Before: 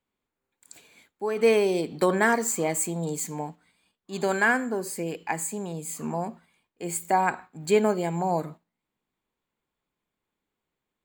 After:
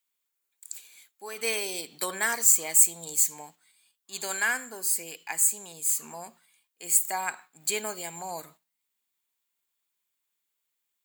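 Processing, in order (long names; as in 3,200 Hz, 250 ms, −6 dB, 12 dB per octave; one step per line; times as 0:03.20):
first-order pre-emphasis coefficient 0.97
level +9 dB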